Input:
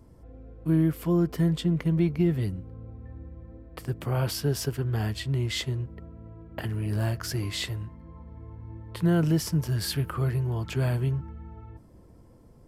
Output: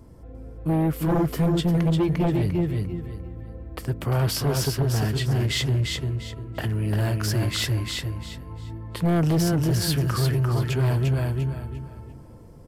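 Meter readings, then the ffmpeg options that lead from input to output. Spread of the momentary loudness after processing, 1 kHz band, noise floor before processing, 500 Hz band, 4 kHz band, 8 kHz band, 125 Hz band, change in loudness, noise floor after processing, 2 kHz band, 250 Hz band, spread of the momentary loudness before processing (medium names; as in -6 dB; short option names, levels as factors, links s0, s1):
15 LU, +7.5 dB, -53 dBFS, +4.5 dB, +6.0 dB, +5.5 dB, +4.5 dB, +3.5 dB, -44 dBFS, +5.5 dB, +3.0 dB, 20 LU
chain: -af "aecho=1:1:348|696|1044|1392:0.631|0.17|0.046|0.0124,aeval=exprs='0.282*sin(PI/2*2.51*val(0)/0.282)':c=same,volume=0.473"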